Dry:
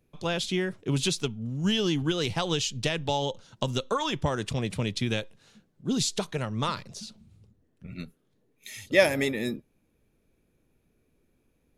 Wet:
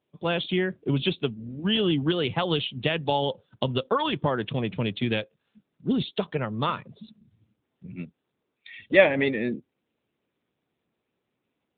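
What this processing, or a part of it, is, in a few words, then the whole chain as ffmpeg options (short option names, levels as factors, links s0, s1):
mobile call with aggressive noise cancelling: -filter_complex "[0:a]asettb=1/sr,asplit=3[s0][s1][s2];[s0]atrim=end=3.274[s3];[s1]atrim=start=3.27:end=4.13,asetpts=PTS-STARTPTS,afade=t=in:d=0.004:c=qsin,afade=t=out:st=0.856:d=0.004:c=qsin,lowshelf=f=170:g=2[s4];[s2]atrim=start=4.126[s5];[s3][s4]acrossfade=d=0.004:c1=hsin:c2=qsin[s6];[s6][s5]acrossfade=d=0.004:c1=qsin:c2=hsin,highpass=f=130:p=1,afftdn=nr=16:nf=-45,volume=1.58" -ar 8000 -c:a libopencore_amrnb -b:a 10200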